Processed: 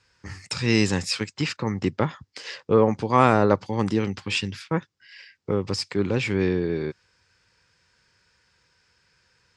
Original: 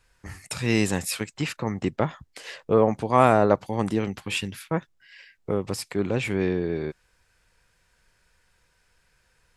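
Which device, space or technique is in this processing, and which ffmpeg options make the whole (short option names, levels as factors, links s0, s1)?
car door speaker: -af "highpass=90,equalizer=f=95:t=q:w=4:g=5,equalizer=f=670:t=q:w=4:g=-8,equalizer=f=5000:t=q:w=4:g=7,lowpass=f=7300:w=0.5412,lowpass=f=7300:w=1.3066,volume=1.26"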